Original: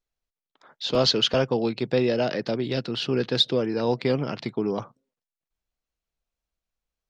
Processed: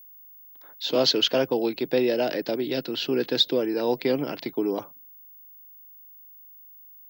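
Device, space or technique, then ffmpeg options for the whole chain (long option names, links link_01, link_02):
old television with a line whistle: -af "highpass=frequency=170:width=0.5412,highpass=frequency=170:width=1.3066,equalizer=frequency=210:width_type=q:width=4:gain=-8,equalizer=frequency=300:width_type=q:width=4:gain=5,equalizer=frequency=1200:width_type=q:width=4:gain=-6,lowpass=frequency=7700:width=0.5412,lowpass=frequency=7700:width=1.3066,aeval=exprs='val(0)+0.00501*sin(2*PI*15625*n/s)':channel_layout=same"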